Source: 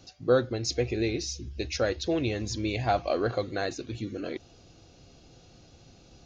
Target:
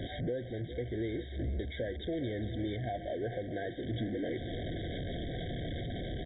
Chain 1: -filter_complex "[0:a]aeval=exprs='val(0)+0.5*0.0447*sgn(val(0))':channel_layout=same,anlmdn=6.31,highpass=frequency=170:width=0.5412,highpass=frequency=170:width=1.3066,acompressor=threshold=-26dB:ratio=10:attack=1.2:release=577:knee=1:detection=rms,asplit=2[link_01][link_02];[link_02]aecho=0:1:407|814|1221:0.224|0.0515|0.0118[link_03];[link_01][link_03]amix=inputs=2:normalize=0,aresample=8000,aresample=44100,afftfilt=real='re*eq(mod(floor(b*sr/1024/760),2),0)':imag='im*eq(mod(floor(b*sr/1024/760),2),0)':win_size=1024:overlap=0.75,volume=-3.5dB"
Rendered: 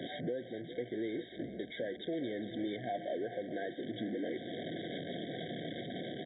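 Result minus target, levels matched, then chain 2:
125 Hz band −9.0 dB
-filter_complex "[0:a]aeval=exprs='val(0)+0.5*0.0447*sgn(val(0))':channel_layout=same,anlmdn=6.31,acompressor=threshold=-26dB:ratio=10:attack=1.2:release=577:knee=1:detection=rms,asplit=2[link_01][link_02];[link_02]aecho=0:1:407|814|1221:0.224|0.0515|0.0118[link_03];[link_01][link_03]amix=inputs=2:normalize=0,aresample=8000,aresample=44100,afftfilt=real='re*eq(mod(floor(b*sr/1024/760),2),0)':imag='im*eq(mod(floor(b*sr/1024/760),2),0)':win_size=1024:overlap=0.75,volume=-3.5dB"

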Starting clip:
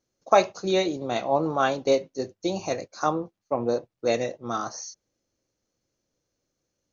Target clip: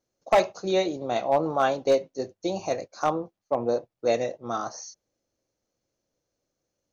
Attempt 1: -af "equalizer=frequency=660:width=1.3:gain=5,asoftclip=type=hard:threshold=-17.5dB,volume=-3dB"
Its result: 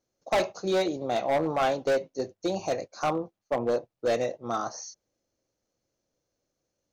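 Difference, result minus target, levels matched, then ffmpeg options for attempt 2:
hard clipping: distortion +7 dB
-af "equalizer=frequency=660:width=1.3:gain=5,asoftclip=type=hard:threshold=-10.5dB,volume=-3dB"

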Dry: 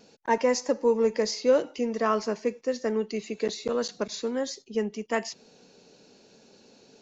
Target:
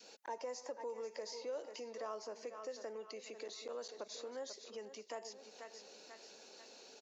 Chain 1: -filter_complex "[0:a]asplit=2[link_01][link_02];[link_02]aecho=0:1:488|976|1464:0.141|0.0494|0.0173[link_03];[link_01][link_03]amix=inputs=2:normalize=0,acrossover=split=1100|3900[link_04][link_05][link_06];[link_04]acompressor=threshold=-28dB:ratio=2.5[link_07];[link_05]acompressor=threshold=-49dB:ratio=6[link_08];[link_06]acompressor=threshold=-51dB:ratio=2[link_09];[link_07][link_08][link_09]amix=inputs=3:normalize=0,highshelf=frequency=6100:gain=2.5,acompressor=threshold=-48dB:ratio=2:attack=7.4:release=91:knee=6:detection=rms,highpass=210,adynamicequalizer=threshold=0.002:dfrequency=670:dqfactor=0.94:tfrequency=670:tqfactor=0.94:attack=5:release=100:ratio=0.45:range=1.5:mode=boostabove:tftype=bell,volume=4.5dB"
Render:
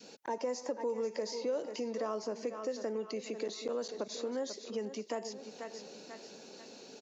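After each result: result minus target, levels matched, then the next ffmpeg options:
250 Hz band +7.0 dB; downward compressor: peak gain reduction −5 dB
-filter_complex "[0:a]asplit=2[link_01][link_02];[link_02]aecho=0:1:488|976|1464:0.141|0.0494|0.0173[link_03];[link_01][link_03]amix=inputs=2:normalize=0,acrossover=split=1100|3900[link_04][link_05][link_06];[link_04]acompressor=threshold=-28dB:ratio=2.5[link_07];[link_05]acompressor=threshold=-49dB:ratio=6[link_08];[link_06]acompressor=threshold=-51dB:ratio=2[link_09];[link_07][link_08][link_09]amix=inputs=3:normalize=0,highshelf=frequency=6100:gain=2.5,acompressor=threshold=-48dB:ratio=2:attack=7.4:release=91:knee=6:detection=rms,highpass=510,adynamicequalizer=threshold=0.002:dfrequency=670:dqfactor=0.94:tfrequency=670:tqfactor=0.94:attack=5:release=100:ratio=0.45:range=1.5:mode=boostabove:tftype=bell,volume=4.5dB"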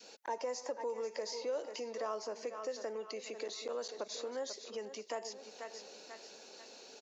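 downward compressor: peak gain reduction −5 dB
-filter_complex "[0:a]asplit=2[link_01][link_02];[link_02]aecho=0:1:488|976|1464:0.141|0.0494|0.0173[link_03];[link_01][link_03]amix=inputs=2:normalize=0,acrossover=split=1100|3900[link_04][link_05][link_06];[link_04]acompressor=threshold=-28dB:ratio=2.5[link_07];[link_05]acompressor=threshold=-49dB:ratio=6[link_08];[link_06]acompressor=threshold=-51dB:ratio=2[link_09];[link_07][link_08][link_09]amix=inputs=3:normalize=0,highshelf=frequency=6100:gain=2.5,acompressor=threshold=-58.5dB:ratio=2:attack=7.4:release=91:knee=6:detection=rms,highpass=510,adynamicequalizer=threshold=0.002:dfrequency=670:dqfactor=0.94:tfrequency=670:tqfactor=0.94:attack=5:release=100:ratio=0.45:range=1.5:mode=boostabove:tftype=bell,volume=4.5dB"

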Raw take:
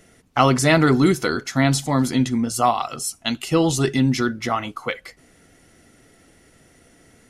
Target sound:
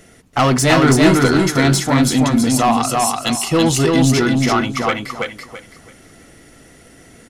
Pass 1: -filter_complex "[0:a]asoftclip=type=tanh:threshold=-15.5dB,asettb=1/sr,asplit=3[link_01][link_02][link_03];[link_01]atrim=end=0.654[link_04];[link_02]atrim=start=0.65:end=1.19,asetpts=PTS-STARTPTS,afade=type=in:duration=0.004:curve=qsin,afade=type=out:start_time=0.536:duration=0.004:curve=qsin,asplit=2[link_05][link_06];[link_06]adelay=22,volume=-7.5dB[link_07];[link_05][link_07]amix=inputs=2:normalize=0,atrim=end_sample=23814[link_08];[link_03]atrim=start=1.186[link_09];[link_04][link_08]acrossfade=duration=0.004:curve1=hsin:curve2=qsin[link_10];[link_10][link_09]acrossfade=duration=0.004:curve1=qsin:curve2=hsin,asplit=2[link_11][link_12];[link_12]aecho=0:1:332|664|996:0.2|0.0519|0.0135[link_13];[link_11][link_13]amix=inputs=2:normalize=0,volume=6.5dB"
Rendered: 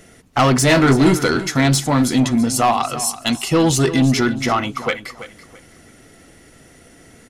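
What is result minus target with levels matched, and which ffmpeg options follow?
echo-to-direct −11.5 dB
-filter_complex "[0:a]asoftclip=type=tanh:threshold=-15.5dB,asettb=1/sr,asplit=3[link_01][link_02][link_03];[link_01]atrim=end=0.654[link_04];[link_02]atrim=start=0.65:end=1.19,asetpts=PTS-STARTPTS,afade=type=in:duration=0.004:curve=qsin,afade=type=out:start_time=0.536:duration=0.004:curve=qsin,asplit=2[link_05][link_06];[link_06]adelay=22,volume=-7.5dB[link_07];[link_05][link_07]amix=inputs=2:normalize=0,atrim=end_sample=23814[link_08];[link_03]atrim=start=1.186[link_09];[link_04][link_08]acrossfade=duration=0.004:curve1=hsin:curve2=qsin[link_10];[link_10][link_09]acrossfade=duration=0.004:curve1=qsin:curve2=hsin,asplit=2[link_11][link_12];[link_12]aecho=0:1:332|664|996|1328:0.75|0.195|0.0507|0.0132[link_13];[link_11][link_13]amix=inputs=2:normalize=0,volume=6.5dB"

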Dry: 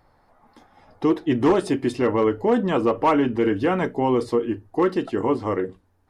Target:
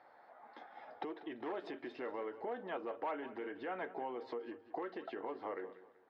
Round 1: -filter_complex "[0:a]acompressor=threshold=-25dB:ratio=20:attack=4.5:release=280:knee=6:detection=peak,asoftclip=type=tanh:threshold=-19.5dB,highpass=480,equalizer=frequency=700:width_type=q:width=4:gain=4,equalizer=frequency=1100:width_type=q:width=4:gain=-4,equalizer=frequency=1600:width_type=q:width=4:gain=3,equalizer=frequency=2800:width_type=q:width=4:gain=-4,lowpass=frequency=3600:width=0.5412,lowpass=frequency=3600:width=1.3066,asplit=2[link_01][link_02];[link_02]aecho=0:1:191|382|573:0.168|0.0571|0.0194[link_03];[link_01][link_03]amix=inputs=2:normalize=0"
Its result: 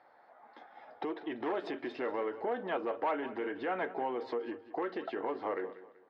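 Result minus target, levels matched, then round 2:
downward compressor: peak gain reduction −7.5 dB
-filter_complex "[0:a]acompressor=threshold=-33dB:ratio=20:attack=4.5:release=280:knee=6:detection=peak,asoftclip=type=tanh:threshold=-19.5dB,highpass=480,equalizer=frequency=700:width_type=q:width=4:gain=4,equalizer=frequency=1100:width_type=q:width=4:gain=-4,equalizer=frequency=1600:width_type=q:width=4:gain=3,equalizer=frequency=2800:width_type=q:width=4:gain=-4,lowpass=frequency=3600:width=0.5412,lowpass=frequency=3600:width=1.3066,asplit=2[link_01][link_02];[link_02]aecho=0:1:191|382|573:0.168|0.0571|0.0194[link_03];[link_01][link_03]amix=inputs=2:normalize=0"

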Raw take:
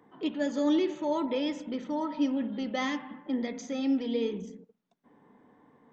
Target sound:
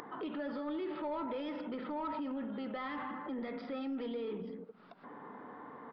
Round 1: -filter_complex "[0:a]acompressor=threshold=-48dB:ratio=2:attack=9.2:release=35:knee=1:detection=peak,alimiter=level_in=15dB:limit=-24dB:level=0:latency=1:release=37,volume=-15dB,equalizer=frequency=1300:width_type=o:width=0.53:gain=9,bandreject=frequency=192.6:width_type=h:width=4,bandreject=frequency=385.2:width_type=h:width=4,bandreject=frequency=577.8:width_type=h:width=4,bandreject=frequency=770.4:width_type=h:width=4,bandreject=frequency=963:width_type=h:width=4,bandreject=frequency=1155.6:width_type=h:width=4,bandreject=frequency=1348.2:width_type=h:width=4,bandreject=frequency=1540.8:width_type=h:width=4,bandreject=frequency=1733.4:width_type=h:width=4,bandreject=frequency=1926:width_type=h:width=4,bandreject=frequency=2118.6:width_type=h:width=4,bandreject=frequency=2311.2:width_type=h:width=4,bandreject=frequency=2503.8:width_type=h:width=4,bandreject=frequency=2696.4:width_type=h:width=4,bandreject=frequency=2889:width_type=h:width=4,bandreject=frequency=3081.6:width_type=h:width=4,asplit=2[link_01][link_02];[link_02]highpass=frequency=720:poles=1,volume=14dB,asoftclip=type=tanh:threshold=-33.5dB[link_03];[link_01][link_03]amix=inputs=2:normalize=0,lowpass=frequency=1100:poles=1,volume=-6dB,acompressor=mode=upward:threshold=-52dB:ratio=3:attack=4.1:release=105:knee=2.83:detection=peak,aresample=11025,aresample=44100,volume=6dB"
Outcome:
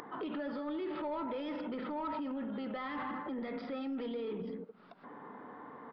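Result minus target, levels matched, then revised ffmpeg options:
downward compressor: peak gain reduction −4 dB
-filter_complex "[0:a]acompressor=threshold=-55.5dB:ratio=2:attack=9.2:release=35:knee=1:detection=peak,alimiter=level_in=15dB:limit=-24dB:level=0:latency=1:release=37,volume=-15dB,equalizer=frequency=1300:width_type=o:width=0.53:gain=9,bandreject=frequency=192.6:width_type=h:width=4,bandreject=frequency=385.2:width_type=h:width=4,bandreject=frequency=577.8:width_type=h:width=4,bandreject=frequency=770.4:width_type=h:width=4,bandreject=frequency=963:width_type=h:width=4,bandreject=frequency=1155.6:width_type=h:width=4,bandreject=frequency=1348.2:width_type=h:width=4,bandreject=frequency=1540.8:width_type=h:width=4,bandreject=frequency=1733.4:width_type=h:width=4,bandreject=frequency=1926:width_type=h:width=4,bandreject=frequency=2118.6:width_type=h:width=4,bandreject=frequency=2311.2:width_type=h:width=4,bandreject=frequency=2503.8:width_type=h:width=4,bandreject=frequency=2696.4:width_type=h:width=4,bandreject=frequency=2889:width_type=h:width=4,bandreject=frequency=3081.6:width_type=h:width=4,asplit=2[link_01][link_02];[link_02]highpass=frequency=720:poles=1,volume=14dB,asoftclip=type=tanh:threshold=-33.5dB[link_03];[link_01][link_03]amix=inputs=2:normalize=0,lowpass=frequency=1100:poles=1,volume=-6dB,acompressor=mode=upward:threshold=-52dB:ratio=3:attack=4.1:release=105:knee=2.83:detection=peak,aresample=11025,aresample=44100,volume=6dB"

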